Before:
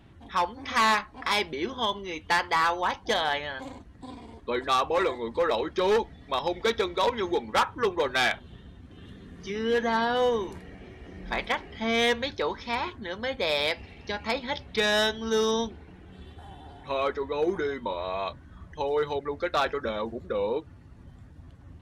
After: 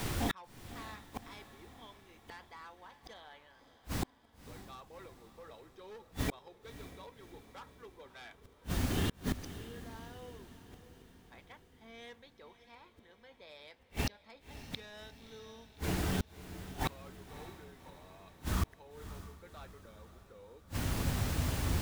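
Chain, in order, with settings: added noise pink -54 dBFS; inverted gate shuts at -35 dBFS, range -42 dB; echo that smears into a reverb 589 ms, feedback 54%, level -13 dB; trim +14.5 dB

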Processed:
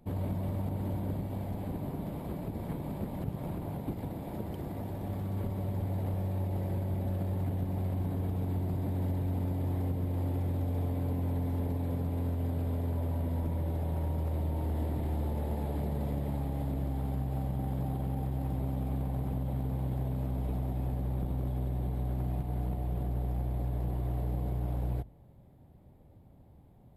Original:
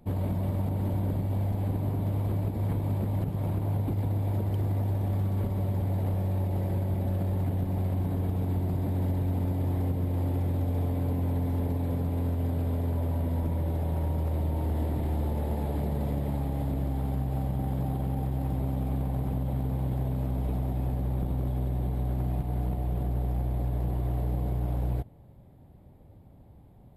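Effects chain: hum notches 50/100 Hz; trim -3.5 dB

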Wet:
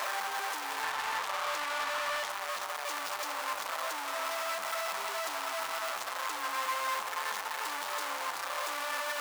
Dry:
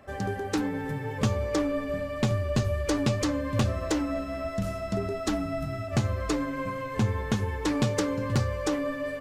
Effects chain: one-bit comparator; resonant high-pass 970 Hz, resonance Q 1.9; 0.83–2.30 s: overdrive pedal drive 8 dB, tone 6.1 kHz, clips at -17.5 dBFS; bit-crushed delay 357 ms, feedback 35%, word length 9-bit, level -11.5 dB; trim -5.5 dB

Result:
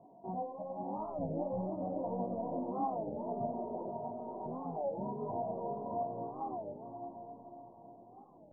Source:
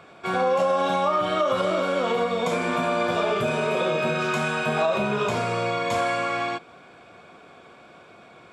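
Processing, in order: rattle on loud lows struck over -39 dBFS, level -19 dBFS; 3.89–4.46 s: steep high-pass 630 Hz 96 dB/octave; reverb removal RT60 1.8 s; 0.97–1.69 s: tilt EQ -3 dB/octave; peak limiter -21.5 dBFS, peak gain reduction 9 dB; rippled Chebyshev low-pass 1 kHz, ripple 9 dB; chorus voices 4, 0.47 Hz, delay 18 ms, depth 3.4 ms; on a send: echo that smears into a reverb 596 ms, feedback 45%, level -4 dB; on the sum: warped record 33 1/3 rpm, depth 250 cents

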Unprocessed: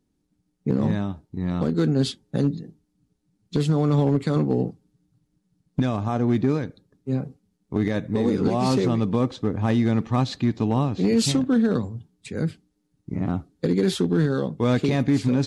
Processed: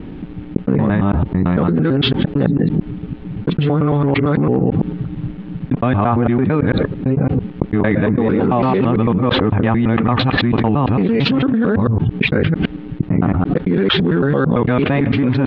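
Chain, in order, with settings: time reversed locally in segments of 112 ms; dynamic bell 1.3 kHz, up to +5 dB, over -40 dBFS, Q 0.87; steep low-pass 3.1 kHz 36 dB/octave; level flattener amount 100%; trim +2 dB

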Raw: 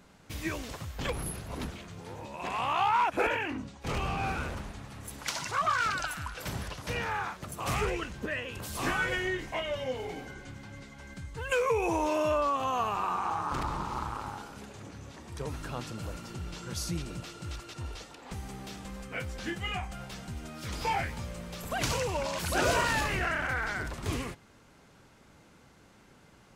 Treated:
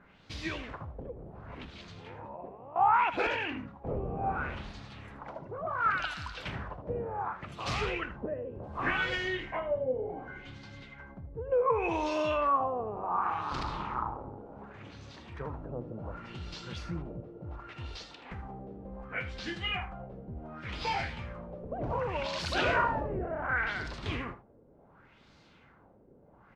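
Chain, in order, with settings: 0.99–2.76 s: compression 6:1, threshold -39 dBFS, peak gain reduction 12 dB; LFO low-pass sine 0.68 Hz 470–4600 Hz; delay 78 ms -13.5 dB; trim -3 dB

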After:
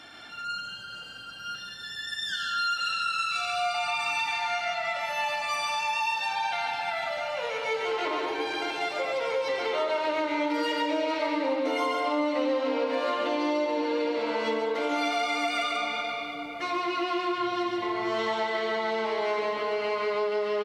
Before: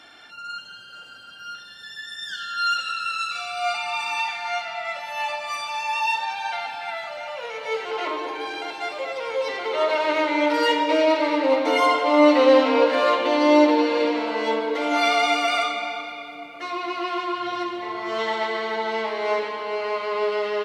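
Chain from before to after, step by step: tone controls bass +6 dB, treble +1 dB; on a send: delay 139 ms -4.5 dB; on the sum: compression 6:1, threshold -25 dBFS, peak gain reduction 15.5 dB

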